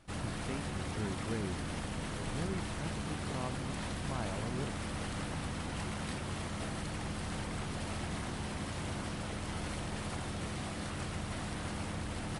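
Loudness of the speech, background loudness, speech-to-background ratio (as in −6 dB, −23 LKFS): −43.0 LKFS, −39.5 LKFS, −3.5 dB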